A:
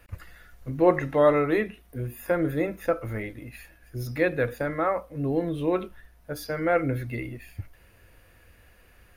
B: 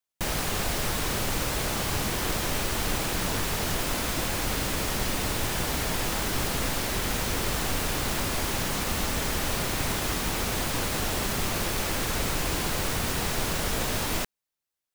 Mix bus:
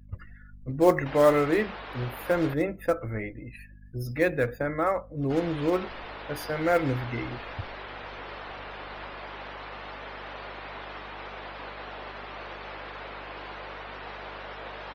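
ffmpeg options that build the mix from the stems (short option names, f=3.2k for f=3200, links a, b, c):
-filter_complex "[0:a]acrusher=bits=5:mode=log:mix=0:aa=0.000001,volume=-0.5dB[a];[1:a]highpass=540,aemphasis=mode=reproduction:type=75kf,acrossover=split=5600[b][c];[c]acompressor=threshold=-55dB:ratio=4:attack=1:release=60[d];[b][d]amix=inputs=2:normalize=0,adelay=850,volume=-4.5dB,asplit=3[e][f][g];[e]atrim=end=2.54,asetpts=PTS-STARTPTS,afade=t=out:st=2.536:d=0.004:c=hsin[h];[f]atrim=start=2.54:end=5.3,asetpts=PTS-STARTPTS,volume=0[i];[g]atrim=start=5.3,asetpts=PTS-STARTPTS,afade=t=in:d=0.004:c=hsin[j];[h][i][j]concat=n=3:v=0:a=1[k];[a][k]amix=inputs=2:normalize=0,afftdn=nr=30:nf=-48,aeval=exprs='val(0)+0.00355*(sin(2*PI*50*n/s)+sin(2*PI*2*50*n/s)/2+sin(2*PI*3*50*n/s)/3+sin(2*PI*4*50*n/s)/4+sin(2*PI*5*50*n/s)/5)':c=same"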